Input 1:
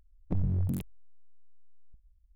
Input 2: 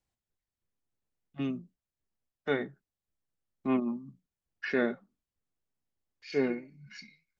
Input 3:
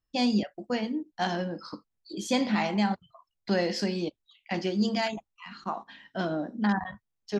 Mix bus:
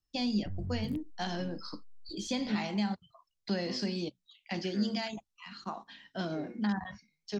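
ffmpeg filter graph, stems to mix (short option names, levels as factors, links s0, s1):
-filter_complex "[0:a]alimiter=level_in=2.51:limit=0.0631:level=0:latency=1:release=165,volume=0.398,adelay=150,volume=0.631[s0];[1:a]equalizer=f=5900:w=3.8:g=12,volume=0.126[s1];[2:a]equalizer=f=5300:w=0.65:g=10,volume=0.447[s2];[s0][s1][s2]amix=inputs=3:normalize=0,acrossover=split=5400[s3][s4];[s4]acompressor=threshold=0.00282:ratio=4:attack=1:release=60[s5];[s3][s5]amix=inputs=2:normalize=0,lowshelf=f=350:g=5,acrossover=split=210[s6][s7];[s7]acompressor=threshold=0.02:ratio=2.5[s8];[s6][s8]amix=inputs=2:normalize=0"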